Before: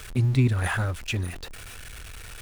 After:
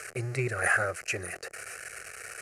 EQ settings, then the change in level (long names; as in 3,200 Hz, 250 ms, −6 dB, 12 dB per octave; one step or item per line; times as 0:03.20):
high-pass filter 290 Hz 12 dB per octave
low-pass filter 11,000 Hz 24 dB per octave
phaser with its sweep stopped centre 950 Hz, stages 6
+5.5 dB